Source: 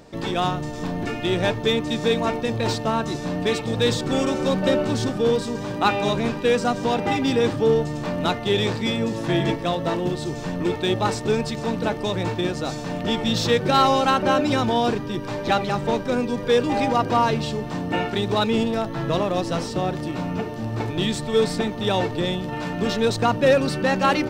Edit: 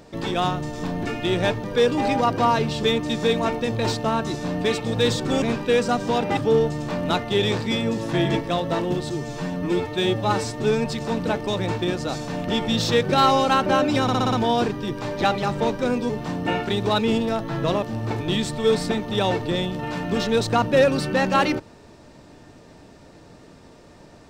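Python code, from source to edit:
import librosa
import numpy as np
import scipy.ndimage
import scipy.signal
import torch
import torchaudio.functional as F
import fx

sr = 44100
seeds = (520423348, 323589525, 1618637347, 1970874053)

y = fx.edit(x, sr, fx.cut(start_s=4.23, length_s=1.95),
    fx.cut(start_s=7.13, length_s=0.39),
    fx.stretch_span(start_s=10.25, length_s=1.17, factor=1.5),
    fx.stutter(start_s=14.59, slice_s=0.06, count=6),
    fx.move(start_s=16.36, length_s=1.19, to_s=1.64),
    fx.cut(start_s=19.28, length_s=1.24), tone=tone)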